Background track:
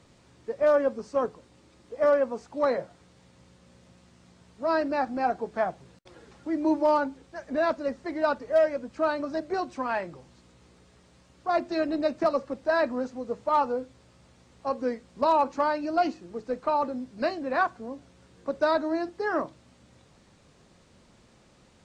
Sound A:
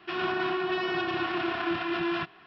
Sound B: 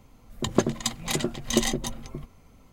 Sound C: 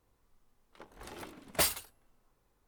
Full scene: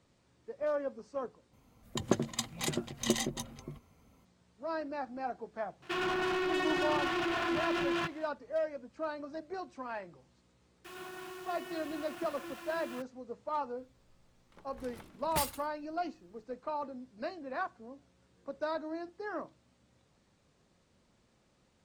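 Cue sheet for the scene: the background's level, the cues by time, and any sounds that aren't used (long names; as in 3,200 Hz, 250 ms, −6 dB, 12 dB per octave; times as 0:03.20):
background track −11.5 dB
0:01.53: overwrite with B −7 dB + high-pass filter 60 Hz
0:05.82: mix in A −10 dB + leveller curve on the samples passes 3
0:10.77: mix in A −17 dB + bit reduction 6 bits
0:13.77: mix in C −6.5 dB + low shelf with overshoot 240 Hz +6.5 dB, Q 1.5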